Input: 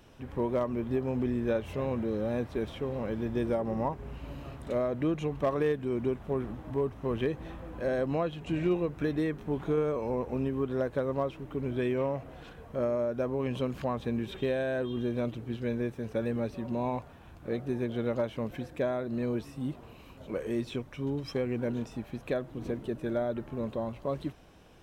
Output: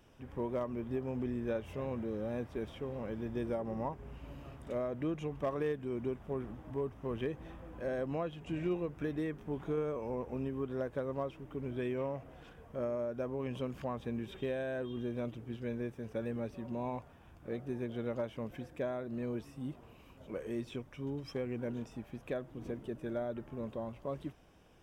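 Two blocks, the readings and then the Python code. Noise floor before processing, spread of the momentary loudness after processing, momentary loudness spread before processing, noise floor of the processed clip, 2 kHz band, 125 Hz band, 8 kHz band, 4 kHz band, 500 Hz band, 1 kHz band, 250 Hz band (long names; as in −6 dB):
−51 dBFS, 8 LU, 8 LU, −58 dBFS, −6.5 dB, −6.5 dB, can't be measured, −7.5 dB, −6.5 dB, −6.5 dB, −6.5 dB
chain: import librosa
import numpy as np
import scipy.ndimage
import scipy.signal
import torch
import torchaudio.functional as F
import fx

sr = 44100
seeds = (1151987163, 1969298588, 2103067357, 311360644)

y = fx.notch(x, sr, hz=4100.0, q=7.2)
y = y * 10.0 ** (-6.5 / 20.0)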